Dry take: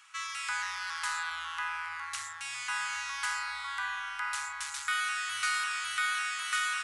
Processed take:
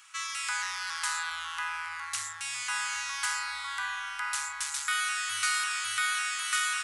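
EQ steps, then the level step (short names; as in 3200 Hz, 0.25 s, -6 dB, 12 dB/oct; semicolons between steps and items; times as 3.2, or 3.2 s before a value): bell 110 Hz +11 dB 0.21 oct; high shelf 4600 Hz +8.5 dB; 0.0 dB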